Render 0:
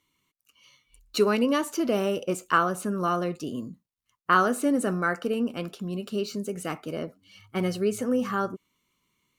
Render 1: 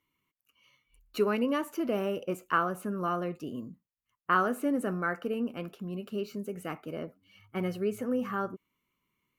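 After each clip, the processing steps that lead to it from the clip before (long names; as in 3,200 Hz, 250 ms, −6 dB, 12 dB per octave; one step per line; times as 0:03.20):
flat-topped bell 5,700 Hz −9 dB
level −5 dB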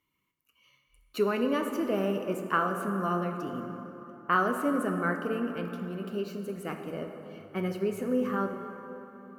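dense smooth reverb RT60 3.7 s, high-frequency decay 0.5×, DRR 5 dB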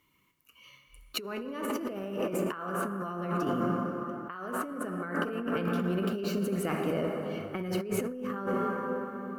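compressor whose output falls as the input rises −37 dBFS, ratio −1
level +4 dB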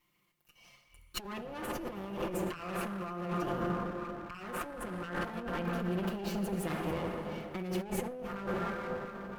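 lower of the sound and its delayed copy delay 5.7 ms
level −3 dB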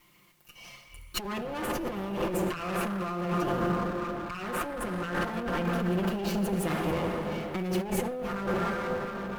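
mu-law and A-law mismatch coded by mu
level +4 dB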